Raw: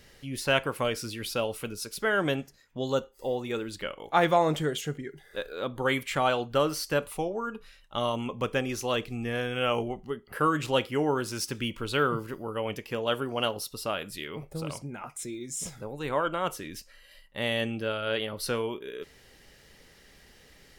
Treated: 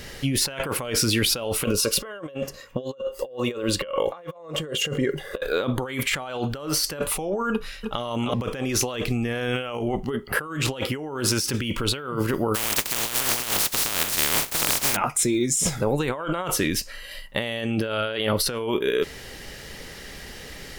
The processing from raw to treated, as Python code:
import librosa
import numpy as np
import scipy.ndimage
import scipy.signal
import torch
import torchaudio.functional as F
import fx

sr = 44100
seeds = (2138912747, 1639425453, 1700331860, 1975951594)

y = fx.small_body(x, sr, hz=(540.0, 1100.0, 2800.0), ring_ms=45, db=16, at=(1.65, 5.41))
y = fx.echo_throw(y, sr, start_s=7.52, length_s=0.5, ms=310, feedback_pct=20, wet_db=-5.5)
y = fx.spec_flatten(y, sr, power=0.11, at=(12.54, 14.95), fade=0.02)
y = fx.over_compress(y, sr, threshold_db=-37.0, ratio=-1.0)
y = y * librosa.db_to_amplitude(8.5)